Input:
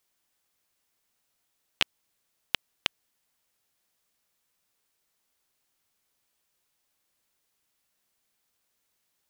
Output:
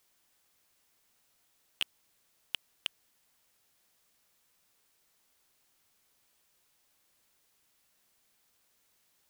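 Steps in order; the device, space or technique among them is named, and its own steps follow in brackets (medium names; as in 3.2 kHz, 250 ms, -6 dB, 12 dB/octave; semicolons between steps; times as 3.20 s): saturation between pre-emphasis and de-emphasis (treble shelf 3.4 kHz +9.5 dB; saturation -18.5 dBFS, distortion -3 dB; treble shelf 3.4 kHz -9.5 dB); trim +5 dB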